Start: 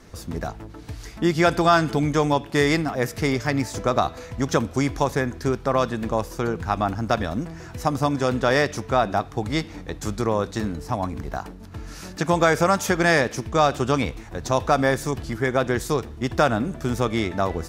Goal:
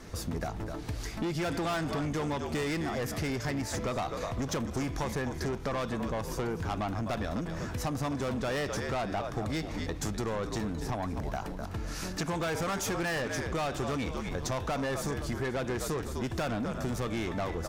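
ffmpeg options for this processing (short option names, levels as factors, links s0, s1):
-filter_complex "[0:a]asplit=4[s0][s1][s2][s3];[s1]adelay=253,afreqshift=-66,volume=0.224[s4];[s2]adelay=506,afreqshift=-132,volume=0.0692[s5];[s3]adelay=759,afreqshift=-198,volume=0.0216[s6];[s0][s4][s5][s6]amix=inputs=4:normalize=0,asoftclip=type=tanh:threshold=0.075,acompressor=threshold=0.0251:ratio=6,volume=1.19"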